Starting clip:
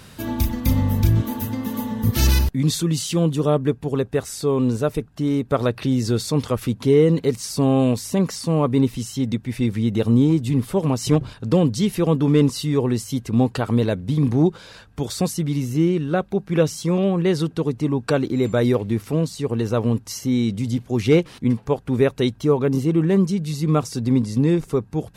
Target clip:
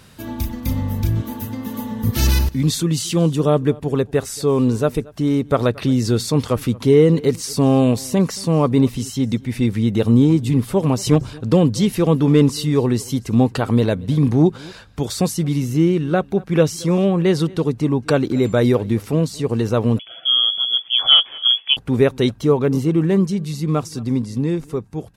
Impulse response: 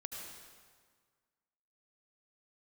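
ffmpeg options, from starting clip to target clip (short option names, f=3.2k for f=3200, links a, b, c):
-filter_complex "[0:a]dynaudnorm=f=400:g=11:m=11.5dB,aecho=1:1:228:0.0668,asettb=1/sr,asplit=3[a][b][c];[a]atrim=end=19.994[d];[b]atrim=start=19.99:end=21.77,asetpts=PTS-STARTPTS,afade=t=in:d=0.004:c=qsin,afade=t=out:st=1.776:d=0.004:c=qsin,lowpass=f=3k:t=q:w=0.5098,lowpass=f=3k:t=q:w=0.6013,lowpass=f=3k:t=q:w=0.9,lowpass=f=3k:t=q:w=2.563,afreqshift=-3500[e];[c]atrim=start=21.766[f];[d][e]acrossfade=d=0.004:c1=hsin:c2=qsin[g];[g][f]acrossfade=d=0.004:c1=qsin:c2=hsin,volume=-3dB"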